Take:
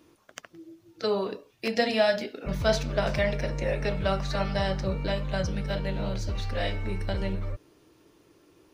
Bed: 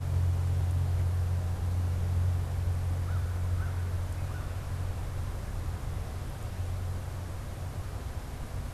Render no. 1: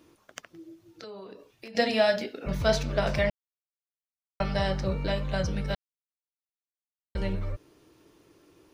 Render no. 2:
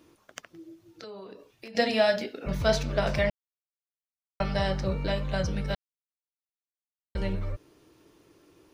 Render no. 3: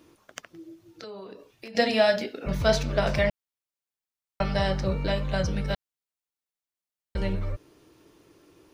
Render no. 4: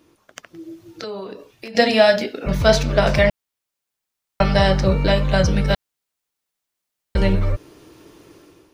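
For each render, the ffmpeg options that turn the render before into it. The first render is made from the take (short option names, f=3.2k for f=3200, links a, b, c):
-filter_complex "[0:a]asettb=1/sr,asplit=3[a][b][c];[a]atrim=end=0.444[d];[b]atrim=start=0.44:end=1.75,asetpts=PTS-STARTPTS,afade=t=in:d=0.004:c=qsin,afade=t=out:st=1.306:d=0.004:c=qsin,acompressor=threshold=-41dB:ratio=6:attack=3.2:release=140:knee=1:detection=peak[e];[c]atrim=start=1.746[f];[d][e]acrossfade=d=0.004:c1=hsin:c2=qsin[g];[g][f]acrossfade=d=0.004:c1=qsin:c2=hsin,asplit=5[h][i][j][k][l];[h]atrim=end=3.3,asetpts=PTS-STARTPTS,afade=t=out:st=3.296:d=0.004:c=hsin[m];[i]atrim=start=3.3:end=4.4,asetpts=PTS-STARTPTS,volume=0[n];[j]atrim=start=4.4:end=5.75,asetpts=PTS-STARTPTS,afade=t=in:d=0.004:c=hsin,afade=t=out:st=1.346:d=0.004:c=hsin[o];[k]atrim=start=5.75:end=7.15,asetpts=PTS-STARTPTS,volume=0[p];[l]atrim=start=7.15,asetpts=PTS-STARTPTS,afade=t=in:d=0.004:c=hsin[q];[m][n][o][p][q]concat=n=5:v=0:a=1"
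-af anull
-af "volume=2dB"
-af "dynaudnorm=f=380:g=3:m=11dB"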